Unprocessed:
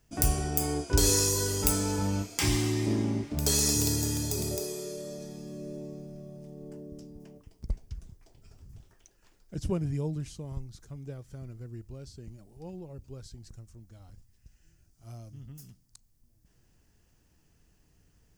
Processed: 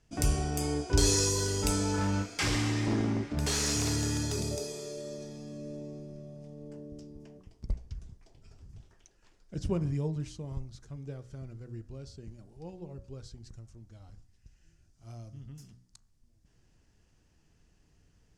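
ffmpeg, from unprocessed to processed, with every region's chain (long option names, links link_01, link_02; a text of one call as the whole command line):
ffmpeg -i in.wav -filter_complex "[0:a]asettb=1/sr,asplit=3[link_01][link_02][link_03];[link_01]atrim=end=1.944[link_04];[link_02]atrim=start=1.94:end=4.4,asetpts=PTS-STARTPTS,afade=type=in:duration=0.004:curve=qsin,afade=type=out:start_time=2.456:duration=0.004:curve=qsin,equalizer=frequency=1500:width=1.5:gain=7.5,aeval=exprs='0.075*(abs(mod(val(0)/0.075+3,4)-2)-1)':channel_layout=same[link_05];[link_03]atrim=start=4.396[link_06];[link_04][link_05]acrossfade=duration=0.004:curve1=hsin:curve2=qsin[link_07];[link_07][link_06]acrossfade=duration=0.004:curve1=qsin:curve2=hsin,lowpass=7200,bandreject=frequency=61.51:width_type=h:width=4,bandreject=frequency=123.02:width_type=h:width=4,bandreject=frequency=184.53:width_type=h:width=4,bandreject=frequency=246.04:width_type=h:width=4,bandreject=frequency=307.55:width_type=h:width=4,bandreject=frequency=369.06:width_type=h:width=4,bandreject=frequency=430.57:width_type=h:width=4,bandreject=frequency=492.08:width_type=h:width=4,bandreject=frequency=553.59:width_type=h:width=4,bandreject=frequency=615.1:width_type=h:width=4,bandreject=frequency=676.61:width_type=h:width=4,bandreject=frequency=738.12:width_type=h:width=4,bandreject=frequency=799.63:width_type=h:width=4,bandreject=frequency=861.14:width_type=h:width=4,bandreject=frequency=922.65:width_type=h:width=4,bandreject=frequency=984.16:width_type=h:width=4,bandreject=frequency=1045.67:width_type=h:width=4,bandreject=frequency=1107.18:width_type=h:width=4,bandreject=frequency=1168.69:width_type=h:width=4,bandreject=frequency=1230.2:width_type=h:width=4,bandreject=frequency=1291.71:width_type=h:width=4,bandreject=frequency=1353.22:width_type=h:width=4,bandreject=frequency=1414.73:width_type=h:width=4,bandreject=frequency=1476.24:width_type=h:width=4,bandreject=frequency=1537.75:width_type=h:width=4,bandreject=frequency=1599.26:width_type=h:width=4,bandreject=frequency=1660.77:width_type=h:width=4,bandreject=frequency=1722.28:width_type=h:width=4,bandreject=frequency=1783.79:width_type=h:width=4,bandreject=frequency=1845.3:width_type=h:width=4,bandreject=frequency=1906.81:width_type=h:width=4,bandreject=frequency=1968.32:width_type=h:width=4" out.wav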